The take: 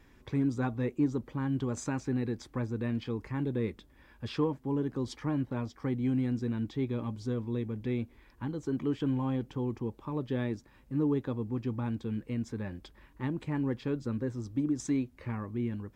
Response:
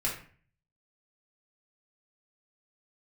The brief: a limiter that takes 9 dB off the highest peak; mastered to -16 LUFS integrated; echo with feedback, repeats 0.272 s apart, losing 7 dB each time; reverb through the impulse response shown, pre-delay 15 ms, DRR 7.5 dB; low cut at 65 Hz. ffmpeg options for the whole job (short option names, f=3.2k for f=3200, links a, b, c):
-filter_complex "[0:a]highpass=65,alimiter=level_in=2.5dB:limit=-24dB:level=0:latency=1,volume=-2.5dB,aecho=1:1:272|544|816|1088|1360:0.447|0.201|0.0905|0.0407|0.0183,asplit=2[a][b];[1:a]atrim=start_sample=2205,adelay=15[c];[b][c]afir=irnorm=-1:irlink=0,volume=-14dB[d];[a][d]amix=inputs=2:normalize=0,volume=19.5dB"